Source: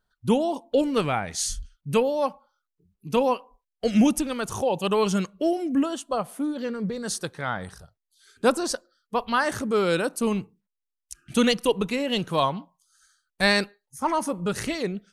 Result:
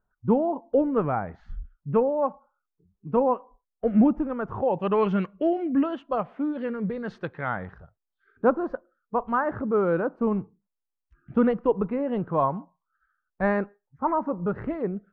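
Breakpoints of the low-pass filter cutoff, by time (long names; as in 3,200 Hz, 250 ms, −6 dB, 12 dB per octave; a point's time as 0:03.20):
low-pass filter 24 dB per octave
0:04.36 1,400 Hz
0:05.14 2,400 Hz
0:07.34 2,400 Hz
0:08.53 1,400 Hz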